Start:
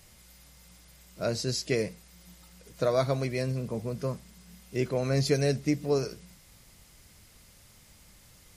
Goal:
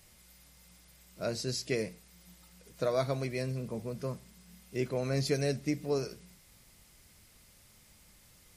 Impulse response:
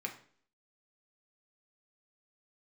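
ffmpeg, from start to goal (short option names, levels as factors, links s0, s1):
-filter_complex "[0:a]asplit=2[s0][s1];[1:a]atrim=start_sample=2205,highshelf=f=6600:g=11[s2];[s1][s2]afir=irnorm=-1:irlink=0,volume=0.178[s3];[s0][s3]amix=inputs=2:normalize=0,volume=0.562"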